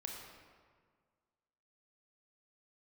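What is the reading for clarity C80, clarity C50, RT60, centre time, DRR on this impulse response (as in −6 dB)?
3.0 dB, 1.5 dB, 1.8 s, 74 ms, 0.0 dB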